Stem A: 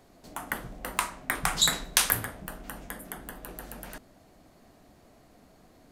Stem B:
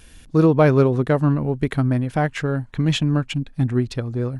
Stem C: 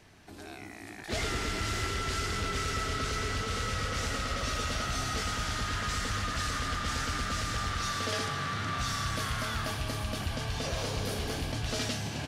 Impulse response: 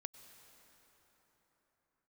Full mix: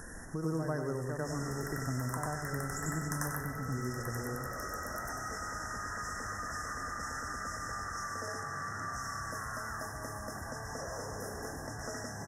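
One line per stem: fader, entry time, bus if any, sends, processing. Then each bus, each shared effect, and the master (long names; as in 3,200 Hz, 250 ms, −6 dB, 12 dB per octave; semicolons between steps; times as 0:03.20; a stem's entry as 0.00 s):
+1.0 dB, 1.15 s, bus A, no send, echo send −9 dB, rotating-speaker cabinet horn 0.9 Hz
−9.0 dB, 0.00 s, bus A, no send, echo send −6 dB, low-shelf EQ 130 Hz +10 dB
−7.5 dB, 0.15 s, no bus, no send, no echo send, no processing
bus A: 0.0 dB, downward compressor 2 to 1, threshold −41 dBFS, peak gain reduction 13.5 dB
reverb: not used
echo: repeating echo 94 ms, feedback 40%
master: linear-phase brick-wall band-stop 2,000–5,100 Hz; low-shelf EQ 370 Hz −9 dB; multiband upward and downward compressor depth 70%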